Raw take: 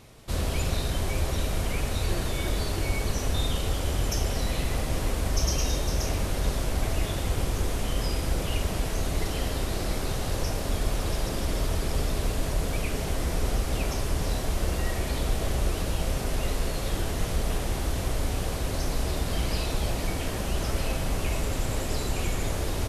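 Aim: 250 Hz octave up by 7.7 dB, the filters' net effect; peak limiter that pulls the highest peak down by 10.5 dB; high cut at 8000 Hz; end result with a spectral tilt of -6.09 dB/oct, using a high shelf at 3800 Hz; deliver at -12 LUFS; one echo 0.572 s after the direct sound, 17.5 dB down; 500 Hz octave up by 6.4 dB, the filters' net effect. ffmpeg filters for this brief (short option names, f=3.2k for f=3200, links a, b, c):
-af "lowpass=8k,equalizer=f=250:t=o:g=8.5,equalizer=f=500:t=o:g=5.5,highshelf=f=3.8k:g=-5,alimiter=limit=-22dB:level=0:latency=1,aecho=1:1:572:0.133,volume=20dB"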